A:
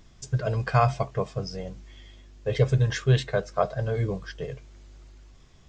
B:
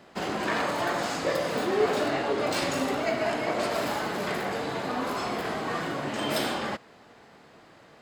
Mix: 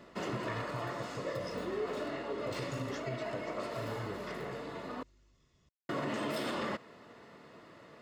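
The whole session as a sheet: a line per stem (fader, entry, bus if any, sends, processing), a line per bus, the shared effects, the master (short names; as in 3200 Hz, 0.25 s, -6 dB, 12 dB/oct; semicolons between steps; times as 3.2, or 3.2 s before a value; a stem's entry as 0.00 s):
-11.5 dB, 0.00 s, no send, compressor, threshold -25 dBFS, peak gain reduction 10 dB
0.0 dB, 0.00 s, muted 5.03–5.89, no send, high shelf 4200 Hz -6 dB; auto duck -10 dB, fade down 0.60 s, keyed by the first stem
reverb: off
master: notch comb 790 Hz; limiter -27 dBFS, peak gain reduction 9 dB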